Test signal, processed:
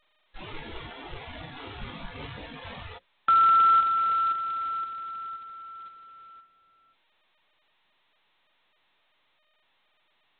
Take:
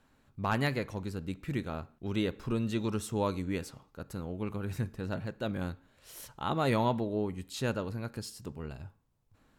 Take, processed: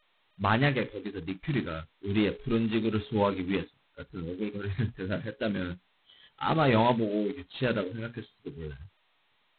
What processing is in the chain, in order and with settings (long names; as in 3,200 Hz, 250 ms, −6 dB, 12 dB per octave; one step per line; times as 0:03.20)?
mains-hum notches 60/120/180/240/300/360/420/480/540 Hz
noise reduction from a noise print of the clip's start 26 dB
level +5.5 dB
G.726 16 kbit/s 8,000 Hz